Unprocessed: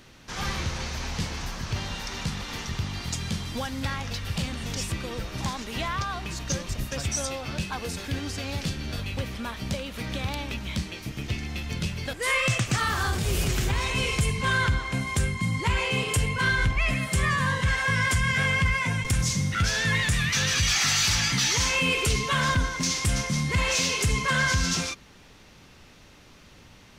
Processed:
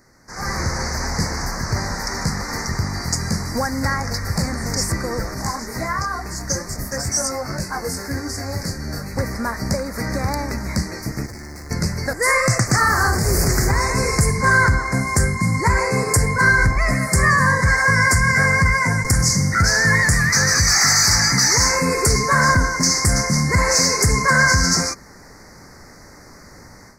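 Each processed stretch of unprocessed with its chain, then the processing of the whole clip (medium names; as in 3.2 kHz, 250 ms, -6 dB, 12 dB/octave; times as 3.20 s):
5.34–9.16 s: treble shelf 10 kHz +5.5 dB + detune thickener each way 16 cents
11.26–11.71 s: companded quantiser 6-bit + hard clipper -38 dBFS + feedback comb 93 Hz, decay 0.16 s, mix 50%
whole clip: Chebyshev band-stop 2–4.7 kHz, order 3; bass shelf 290 Hz -5 dB; level rider gain up to 12 dB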